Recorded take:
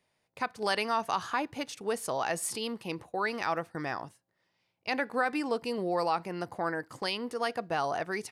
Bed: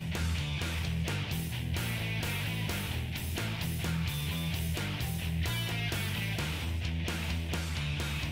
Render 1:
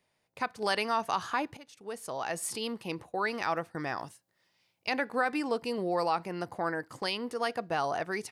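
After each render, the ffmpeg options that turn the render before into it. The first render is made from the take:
ffmpeg -i in.wav -filter_complex "[0:a]asettb=1/sr,asplit=3[link_01][link_02][link_03];[link_01]atrim=end=3.974[link_04];[link_02]atrim=start=3.97:end=4.89,asetpts=PTS-STARTPTS,afade=type=in:duration=0.004:curve=qsin,afade=type=out:start_time=0.916:duration=0.004:curve=qsin,highshelf=frequency=2500:gain=8.5[link_05];[link_03]atrim=start=4.886[link_06];[link_04][link_05]acrossfade=duration=0.004:curve1=hsin:curve2=qsin[link_07];[link_07][link_06]acrossfade=duration=0.004:curve1=qsin:curve2=hsin,asplit=2[link_08][link_09];[link_08]atrim=end=1.57,asetpts=PTS-STARTPTS,afade=type=out:start_time=1.566:duration=0.004:curve=hsin:silence=0.125893[link_10];[link_09]atrim=start=1.57,asetpts=PTS-STARTPTS,afade=type=in:duration=1.08:silence=0.125893[link_11];[link_10][link_11]concat=n=2:v=0:a=1" out.wav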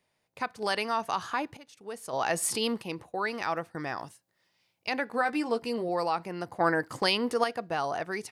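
ffmpeg -i in.wav -filter_complex "[0:a]asettb=1/sr,asplit=3[link_01][link_02][link_03];[link_01]atrim=end=5.124[link_04];[link_02]atrim=start=5.12:end=5.89,asetpts=PTS-STARTPTS,afade=type=in:duration=0.004:curve=qsin,afade=type=out:start_time=0.766:duration=0.004:curve=qsin,asplit=2[link_05][link_06];[link_06]adelay=13,volume=-7dB[link_07];[link_05][link_07]amix=inputs=2:normalize=0,atrim=end_sample=33957[link_08];[link_03]atrim=start=5.886[link_09];[link_04][link_08]acrossfade=duration=0.004:curve1=hsin:curve2=qsin[link_10];[link_10][link_09]acrossfade=duration=0.004:curve1=qsin:curve2=hsin,asettb=1/sr,asplit=3[link_11][link_12][link_13];[link_11]atrim=end=6.604[link_14];[link_12]atrim=start=6.6:end=7.44,asetpts=PTS-STARTPTS,afade=type=in:duration=0.004:curve=qsin,afade=type=out:start_time=0.836:duration=0.004:curve=qsin,acontrast=79[link_15];[link_13]atrim=start=7.436[link_16];[link_14][link_15]acrossfade=duration=0.004:curve1=hsin:curve2=qsin[link_17];[link_17][link_16]acrossfade=duration=0.004:curve1=qsin:curve2=hsin,asplit=3[link_18][link_19][link_20];[link_18]atrim=end=2.132[link_21];[link_19]atrim=start=2.128:end=2.822,asetpts=PTS-STARTPTS,volume=6dB[link_22];[link_20]atrim=start=2.818[link_23];[link_21][link_22]acrossfade=duration=0.004:curve1=hsin:curve2=hsin[link_24];[link_24][link_23]acrossfade=duration=0.004:curve1=hsin:curve2=hsin" out.wav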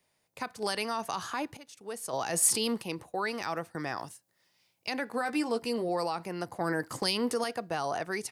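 ffmpeg -i in.wav -filter_complex "[0:a]acrossover=split=320|5500[link_01][link_02][link_03];[link_02]alimiter=limit=-23.5dB:level=0:latency=1:release=31[link_04];[link_03]acontrast=65[link_05];[link_01][link_04][link_05]amix=inputs=3:normalize=0" out.wav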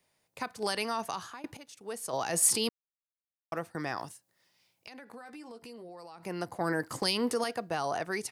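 ffmpeg -i in.wav -filter_complex "[0:a]asettb=1/sr,asplit=3[link_01][link_02][link_03];[link_01]atrim=end=4.114[link_04];[link_02]atrim=start=4.11:end=6.23,asetpts=PTS-STARTPTS,afade=type=in:duration=0.004:curve=qsin,afade=type=out:start_time=2.116:duration=0.004:curve=qsin,acompressor=threshold=-45dB:ratio=6:attack=3.2:release=140:knee=1:detection=peak[link_05];[link_03]atrim=start=6.226[link_06];[link_04][link_05]acrossfade=duration=0.004:curve1=hsin:curve2=qsin[link_07];[link_07][link_06]acrossfade=duration=0.004:curve1=qsin:curve2=hsin,asplit=4[link_08][link_09][link_10][link_11];[link_08]atrim=end=1.44,asetpts=PTS-STARTPTS,afade=type=out:start_time=1.04:duration=0.4:silence=0.1[link_12];[link_09]atrim=start=1.44:end=2.69,asetpts=PTS-STARTPTS,afade=type=in:duration=0.004:curve=hsin:silence=0.1,afade=type=out:start_time=1.246:duration=0.004:curve=hsin[link_13];[link_10]atrim=start=2.69:end=3.52,asetpts=PTS-STARTPTS,volume=0[link_14];[link_11]atrim=start=3.52,asetpts=PTS-STARTPTS,afade=type=in:duration=0.004:curve=hsin[link_15];[link_12][link_13][link_14][link_15]concat=n=4:v=0:a=1" out.wav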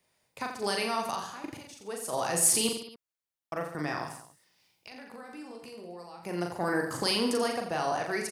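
ffmpeg -i in.wav -af "aecho=1:1:40|86|138.9|199.7|269.7:0.631|0.398|0.251|0.158|0.1" out.wav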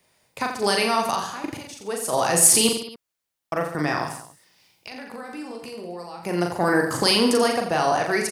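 ffmpeg -i in.wav -af "volume=9dB,alimiter=limit=-3dB:level=0:latency=1" out.wav

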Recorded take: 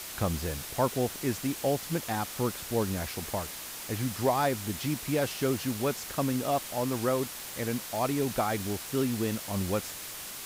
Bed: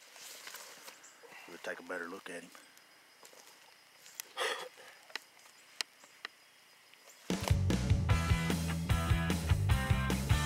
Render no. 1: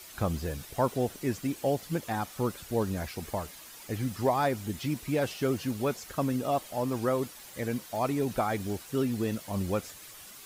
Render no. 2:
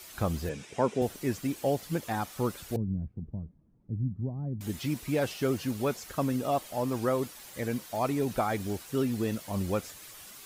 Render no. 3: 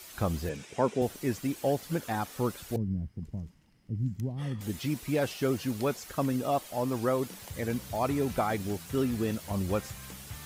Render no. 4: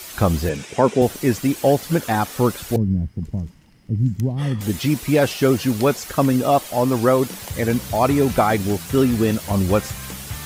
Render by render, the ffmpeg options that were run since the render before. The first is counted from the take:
ffmpeg -i in.wav -af "afftdn=noise_reduction=10:noise_floor=-41" out.wav
ffmpeg -i in.wav -filter_complex "[0:a]asettb=1/sr,asplit=3[link_01][link_02][link_03];[link_01]atrim=end=0.494[link_04];[link_02]atrim=start=0.49:end=1.02,asetpts=PTS-STARTPTS,afade=type=in:duration=0.004:curve=qsin,afade=type=out:start_time=0.526:duration=0.004:curve=qsin,highpass=140,equalizer=frequency=210:width_type=q:width=4:gain=5,equalizer=frequency=430:width_type=q:width=4:gain=5,equalizer=frequency=690:width_type=q:width=4:gain=-3,equalizer=frequency=1200:width_type=q:width=4:gain=-4,equalizer=frequency=2400:width_type=q:width=4:gain=6,equalizer=frequency=4300:width_type=q:width=4:gain=-7,lowpass=frequency=7900:width=0.5412,lowpass=frequency=7900:width=1.3066[link_05];[link_03]atrim=start=1.016[link_06];[link_04][link_05]acrossfade=duration=0.004:curve1=hsin:curve2=qsin[link_07];[link_07][link_06]acrossfade=duration=0.004:curve1=qsin:curve2=hsin,asettb=1/sr,asplit=3[link_08][link_09][link_10];[link_08]atrim=end=2.764[link_11];[link_09]atrim=start=2.76:end=4.61,asetpts=PTS-STARTPTS,afade=type=in:duration=0.004:curve=qsin,afade=type=out:start_time=1.846:duration=0.004:curve=qsin,lowpass=frequency=170:width_type=q:width=1.5[link_12];[link_10]atrim=start=4.606[link_13];[link_11][link_12]acrossfade=duration=0.004:curve1=hsin:curve2=qsin[link_14];[link_14][link_13]acrossfade=duration=0.004:curve1=qsin:curve2=hsin" out.wav
ffmpeg -i in.wav -i bed.wav -filter_complex "[1:a]volume=-14dB[link_01];[0:a][link_01]amix=inputs=2:normalize=0" out.wav
ffmpeg -i in.wav -af "volume=12dB,alimiter=limit=-3dB:level=0:latency=1" out.wav

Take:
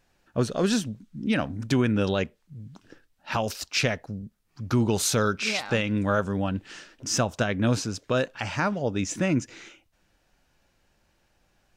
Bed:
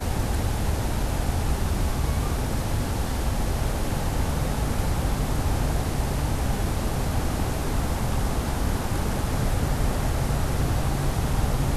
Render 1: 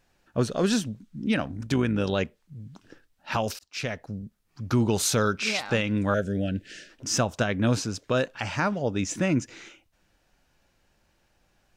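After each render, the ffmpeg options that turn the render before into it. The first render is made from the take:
ffmpeg -i in.wav -filter_complex "[0:a]asettb=1/sr,asplit=3[link_01][link_02][link_03];[link_01]atrim=end=1.364[link_04];[link_02]atrim=start=1.36:end=2.13,asetpts=PTS-STARTPTS,afade=type=in:duration=0.004:curve=qsin,afade=type=out:start_time=0.766:duration=0.004:curve=qsin,tremolo=f=53:d=0.4[link_05];[link_03]atrim=start=2.126[link_06];[link_04][link_05]acrossfade=duration=0.004:curve1=hsin:curve2=qsin[link_07];[link_07][link_06]acrossfade=duration=0.004:curve1=qsin:curve2=hsin,asettb=1/sr,asplit=3[link_08][link_09][link_10];[link_08]atrim=end=6.144[link_11];[link_09]atrim=start=6.14:end=6.9,asetpts=PTS-STARTPTS,afade=type=in:duration=0.004:curve=qsin,afade=type=out:start_time=0.756:duration=0.004:curve=qsin,asuperstop=centerf=1000:order=8:qfactor=1.2[link_12];[link_10]atrim=start=6.896[link_13];[link_11][link_12]acrossfade=duration=0.004:curve1=hsin:curve2=qsin[link_14];[link_14][link_13]acrossfade=duration=0.004:curve1=qsin:curve2=hsin,asplit=2[link_15][link_16];[link_15]atrim=end=3.59,asetpts=PTS-STARTPTS,afade=type=out:start_time=3.586:duration=0.004:curve=hsin[link_17];[link_16]atrim=start=3.59,asetpts=PTS-STARTPTS,afade=type=in:duration=0.55[link_18];[link_17][link_18]concat=n=2:v=0:a=1" out.wav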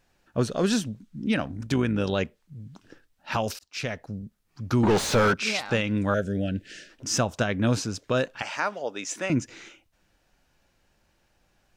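ffmpeg -i in.wav -filter_complex "[0:a]asettb=1/sr,asplit=3[link_01][link_02][link_03];[link_01]atrim=end=4.834[link_04];[link_02]atrim=start=4.83:end=5.34,asetpts=PTS-STARTPTS,afade=type=in:duration=0.004:curve=qsin,afade=type=out:start_time=0.506:duration=0.004:curve=qsin,asplit=2[link_05][link_06];[link_06]highpass=frequency=720:poles=1,volume=30dB,asoftclip=type=tanh:threshold=-12.5dB[link_07];[link_05][link_07]amix=inputs=2:normalize=0,lowpass=frequency=1400:poles=1,volume=-6dB[link_08];[link_03]atrim=start=5.336[link_09];[link_04][link_08]acrossfade=duration=0.004:curve1=hsin:curve2=qsin[link_10];[link_10][link_09]acrossfade=duration=0.004:curve1=qsin:curve2=hsin,asettb=1/sr,asplit=3[link_11][link_12][link_13];[link_11]atrim=end=8.424[link_14];[link_12]atrim=start=8.42:end=9.3,asetpts=PTS-STARTPTS,afade=type=in:duration=0.004:curve=qsin,afade=type=out:start_time=0.876:duration=0.004:curve=qsin,highpass=500[link_15];[link_13]atrim=start=9.296[link_16];[link_14][link_15]acrossfade=duration=0.004:curve1=hsin:curve2=qsin[link_17];[link_17][link_16]acrossfade=duration=0.004:curve1=qsin:curve2=hsin" out.wav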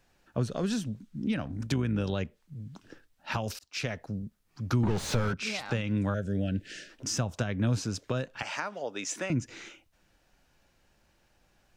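ffmpeg -i in.wav -filter_complex "[0:a]acrossover=split=170[link_01][link_02];[link_02]acompressor=threshold=-30dB:ratio=10[link_03];[link_01][link_03]amix=inputs=2:normalize=0" out.wav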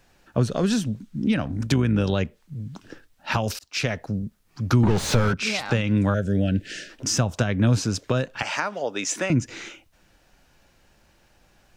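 ffmpeg -i in.wav -af "volume=8dB" out.wav

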